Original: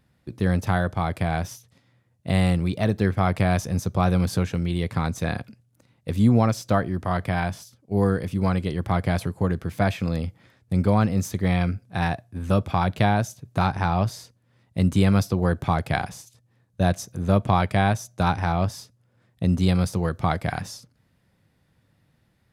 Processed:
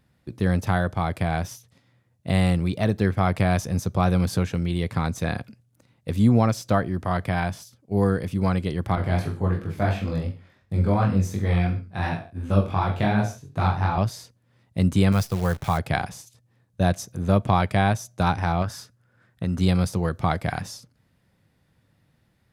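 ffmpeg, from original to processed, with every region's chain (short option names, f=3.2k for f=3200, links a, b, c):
-filter_complex "[0:a]asettb=1/sr,asplit=3[a][b][c];[a]atrim=end=8.954[d];[b]atrim=start=8.95:end=13.98,asetpts=PTS-STARTPTS,afade=t=in:d=0.004:c=qsin,afade=t=out:st=5.026:d=0.004:c=qsin,aecho=1:1:20|44|72.8|107.4|148.8:0.631|0.398|0.251|0.158|0.1,atrim=end_sample=221823,flanger=delay=19:depth=4.1:speed=2.8,highshelf=f=4.6k:g=-6.5[e];[c]atrim=start=13.976[f];[d][e]acrossfade=d=0.004:c1=hsin:c2=qsin[g];[g][f]acrossfade=d=0.004:c1=qsin:c2=hsin,asettb=1/sr,asplit=3[h][i][j];[h]atrim=end=15.124[k];[i]atrim=start=15.12:end=15.78,asetpts=PTS-STARTPTS,afade=t=in:d=0.004:c=qsin,afade=t=out:st=0.656:d=0.004:c=qsin,equalizer=f=290:w=1.7:g=-9.5,acrusher=bits=7:dc=4:mix=0:aa=0.000001[l];[j]atrim=start=15.776[m];[k][l]acrossfade=d=0.004:c1=hsin:c2=qsin[n];[n][m]acrossfade=d=0.004:c1=qsin:c2=hsin,asettb=1/sr,asplit=3[o][p][q];[o]atrim=end=18.624[r];[p]atrim=start=18.62:end=19.61,asetpts=PTS-STARTPTS,afade=t=in:d=0.004:c=qsin,afade=t=out:st=0.986:d=0.004:c=qsin,equalizer=f=1.5k:w=2.5:g=11.5,acompressor=threshold=-24dB:ratio=2:attack=3.2:release=140:knee=1:detection=peak[s];[q]atrim=start=19.606[t];[r][s]acrossfade=d=0.004:c1=hsin:c2=qsin[u];[u][t]acrossfade=d=0.004:c1=qsin:c2=hsin"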